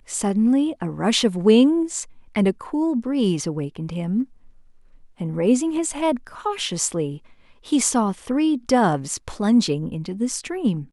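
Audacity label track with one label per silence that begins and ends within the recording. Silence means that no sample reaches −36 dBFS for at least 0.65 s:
4.240000	5.200000	silence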